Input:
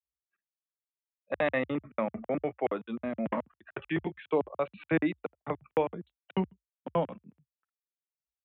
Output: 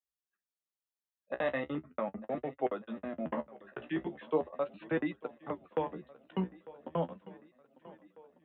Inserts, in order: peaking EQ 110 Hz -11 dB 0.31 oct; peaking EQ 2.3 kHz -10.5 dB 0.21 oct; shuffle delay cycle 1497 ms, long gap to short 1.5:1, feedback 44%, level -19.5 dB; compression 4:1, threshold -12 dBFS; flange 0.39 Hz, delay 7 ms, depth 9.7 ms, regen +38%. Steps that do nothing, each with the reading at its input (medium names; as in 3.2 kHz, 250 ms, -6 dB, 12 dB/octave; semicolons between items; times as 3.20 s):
compression, threshold -12 dBFS: peak at its input -15.5 dBFS